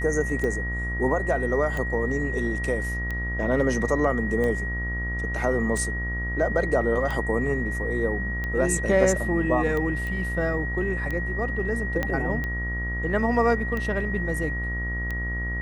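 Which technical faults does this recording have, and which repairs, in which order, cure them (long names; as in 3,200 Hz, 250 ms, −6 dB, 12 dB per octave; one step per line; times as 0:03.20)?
mains buzz 60 Hz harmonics 30 −30 dBFS
scratch tick 45 rpm −18 dBFS
whistle 1,900 Hz −30 dBFS
0:10.07: click
0:12.03: click −13 dBFS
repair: click removal
hum removal 60 Hz, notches 30
notch filter 1,900 Hz, Q 30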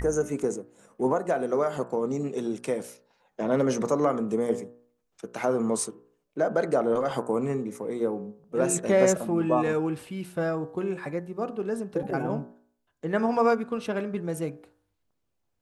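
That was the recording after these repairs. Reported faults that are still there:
0:12.03: click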